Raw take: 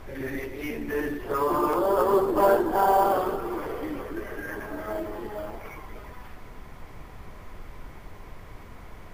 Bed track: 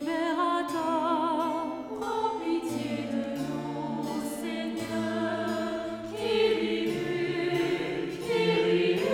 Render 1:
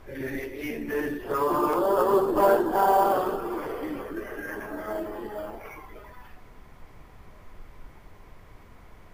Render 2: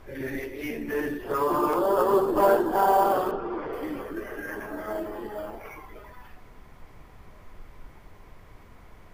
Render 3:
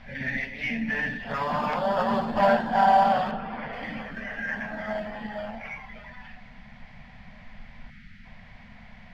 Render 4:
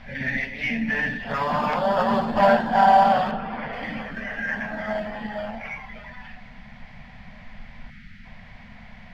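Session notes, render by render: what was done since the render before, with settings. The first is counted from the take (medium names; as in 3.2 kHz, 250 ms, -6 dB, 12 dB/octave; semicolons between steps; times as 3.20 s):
noise print and reduce 6 dB
3.31–3.73 s: distance through air 200 m
7.90–8.25 s: time-frequency box 340–1200 Hz -20 dB; FFT filter 100 Hz 0 dB, 230 Hz +11 dB, 340 Hz -25 dB, 490 Hz -7 dB, 720 Hz +5 dB, 1.2 kHz -5 dB, 1.8 kHz +10 dB, 4.6 kHz +5 dB, 11 kHz -22 dB
trim +3.5 dB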